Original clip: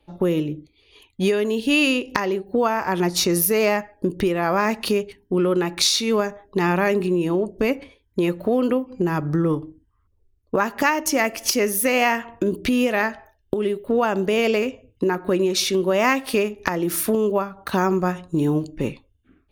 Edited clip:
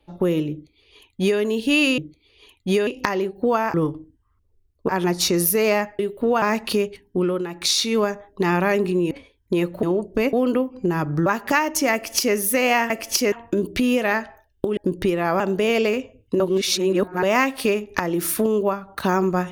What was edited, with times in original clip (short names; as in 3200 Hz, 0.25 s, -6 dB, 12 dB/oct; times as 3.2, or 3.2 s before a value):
0.51–1.4 copy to 1.98
3.95–4.58 swap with 13.66–14.09
5.33–5.95 dip -8.5 dB, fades 0.31 s
7.27–7.77 move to 8.49
9.42–10.57 move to 2.85
11.24–11.66 copy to 12.21
15.09–15.92 reverse